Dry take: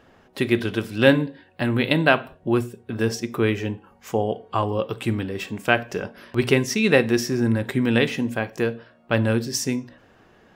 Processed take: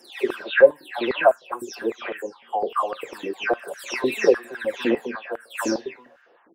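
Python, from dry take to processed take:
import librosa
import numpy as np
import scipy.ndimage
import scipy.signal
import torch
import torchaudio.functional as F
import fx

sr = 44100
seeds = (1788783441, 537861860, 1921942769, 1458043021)

y = fx.spec_delay(x, sr, highs='early', ms=542)
y = fx.stretch_vocoder(y, sr, factor=0.62)
y = fx.filter_held_highpass(y, sr, hz=9.9, low_hz=330.0, high_hz=1500.0)
y = y * librosa.db_to_amplitude(-3.0)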